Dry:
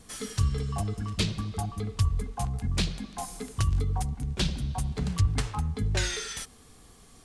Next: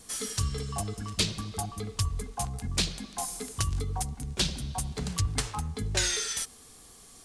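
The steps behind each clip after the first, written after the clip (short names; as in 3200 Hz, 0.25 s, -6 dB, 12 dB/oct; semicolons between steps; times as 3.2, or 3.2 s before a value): tone controls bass -5 dB, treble +7 dB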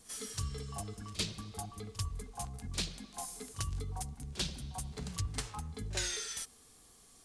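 pre-echo 42 ms -17 dB; gain -8.5 dB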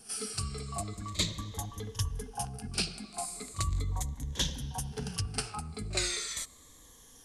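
moving spectral ripple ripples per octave 1.1, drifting -0.38 Hz, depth 11 dB; gain +3.5 dB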